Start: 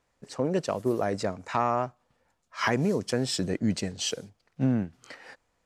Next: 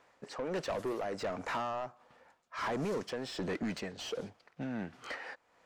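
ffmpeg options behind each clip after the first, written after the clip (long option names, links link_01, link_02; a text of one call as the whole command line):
ffmpeg -i in.wav -filter_complex "[0:a]acrossover=split=1100|4600[link_01][link_02][link_03];[link_01]acompressor=threshold=-31dB:ratio=4[link_04];[link_02]acompressor=threshold=-42dB:ratio=4[link_05];[link_03]acompressor=threshold=-47dB:ratio=4[link_06];[link_04][link_05][link_06]amix=inputs=3:normalize=0,tremolo=f=1.4:d=0.63,asplit=2[link_07][link_08];[link_08]highpass=frequency=720:poles=1,volume=29dB,asoftclip=type=tanh:threshold=-17dB[link_09];[link_07][link_09]amix=inputs=2:normalize=0,lowpass=frequency=1700:poles=1,volume=-6dB,volume=-8.5dB" out.wav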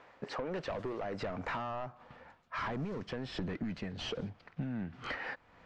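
ffmpeg -i in.wav -af "lowpass=3600,asubboost=boost=4:cutoff=220,acompressor=threshold=-43dB:ratio=6,volume=7.5dB" out.wav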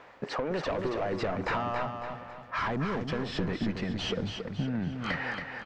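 ffmpeg -i in.wav -af "aecho=1:1:277|554|831|1108|1385:0.501|0.205|0.0842|0.0345|0.0142,volume=6dB" out.wav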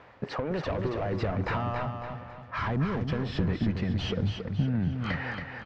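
ffmpeg -i in.wav -af "lowpass=5600,equalizer=frequency=88:width_type=o:width=1.8:gain=12,volume=-1.5dB" out.wav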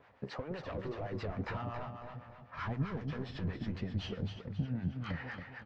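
ffmpeg -i in.wav -filter_complex "[0:a]flanger=delay=6.5:depth=9.1:regen=58:speed=1.8:shape=triangular,acrossover=split=730[link_01][link_02];[link_01]aeval=exprs='val(0)*(1-0.7/2+0.7/2*cos(2*PI*7.8*n/s))':channel_layout=same[link_03];[link_02]aeval=exprs='val(0)*(1-0.7/2-0.7/2*cos(2*PI*7.8*n/s))':channel_layout=same[link_04];[link_03][link_04]amix=inputs=2:normalize=0,volume=-2dB" out.wav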